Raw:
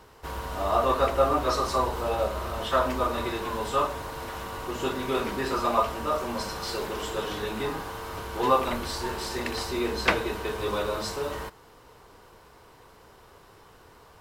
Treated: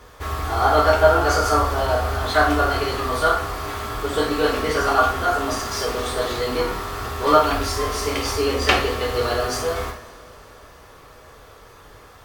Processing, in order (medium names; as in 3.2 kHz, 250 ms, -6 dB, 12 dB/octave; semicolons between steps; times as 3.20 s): two-slope reverb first 0.48 s, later 3.9 s, from -22 dB, DRR -1 dB; tape speed +16%; trim +3.5 dB